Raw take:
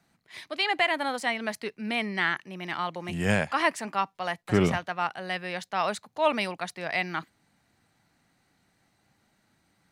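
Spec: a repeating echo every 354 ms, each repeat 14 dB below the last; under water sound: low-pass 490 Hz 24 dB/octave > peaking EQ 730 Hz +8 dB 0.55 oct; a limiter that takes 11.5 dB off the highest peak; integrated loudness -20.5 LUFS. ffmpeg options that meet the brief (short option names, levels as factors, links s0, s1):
-af "alimiter=limit=0.0841:level=0:latency=1,lowpass=f=490:w=0.5412,lowpass=f=490:w=1.3066,equalizer=f=730:t=o:w=0.55:g=8,aecho=1:1:354|708:0.2|0.0399,volume=7.94"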